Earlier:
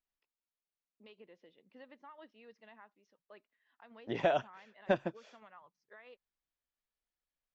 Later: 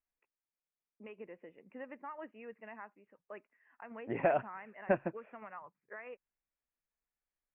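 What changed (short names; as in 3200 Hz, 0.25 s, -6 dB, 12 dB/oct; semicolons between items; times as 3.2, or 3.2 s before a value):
first voice +8.5 dB; master: add steep low-pass 2600 Hz 72 dB/oct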